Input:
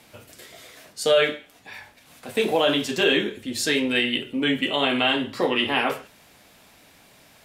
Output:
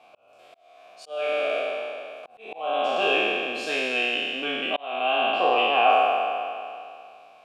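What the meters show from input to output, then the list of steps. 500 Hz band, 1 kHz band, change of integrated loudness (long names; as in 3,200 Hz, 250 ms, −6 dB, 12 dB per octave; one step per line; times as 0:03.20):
−1.5 dB, +7.0 dB, −1.5 dB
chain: peak hold with a decay on every bin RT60 2.42 s
formant filter a
volume swells 525 ms
level +8.5 dB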